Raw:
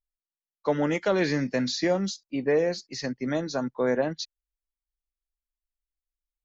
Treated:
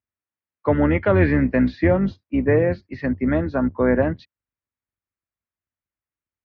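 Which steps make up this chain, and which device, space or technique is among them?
sub-octave bass pedal (octave divider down 2 oct, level -3 dB; cabinet simulation 74–2300 Hz, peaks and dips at 92 Hz +8 dB, 250 Hz +3 dB, 460 Hz -3 dB, 770 Hz -4 dB); trim +7 dB

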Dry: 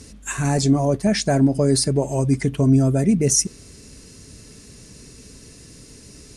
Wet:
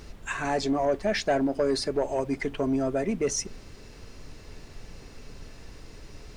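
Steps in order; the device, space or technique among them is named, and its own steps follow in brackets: aircraft cabin announcement (band-pass 430–3400 Hz; saturation -16 dBFS, distortion -20 dB; brown noise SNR 13 dB)

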